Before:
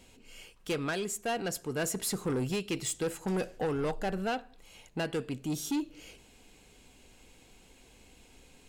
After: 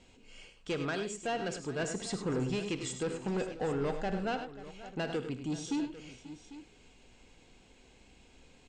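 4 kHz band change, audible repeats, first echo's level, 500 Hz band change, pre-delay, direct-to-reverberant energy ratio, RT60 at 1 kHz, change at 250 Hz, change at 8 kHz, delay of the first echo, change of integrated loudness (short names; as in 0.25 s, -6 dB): -2.5 dB, 4, -16.0 dB, -1.0 dB, none, none, none, -1.0 dB, -6.5 dB, 50 ms, -2.0 dB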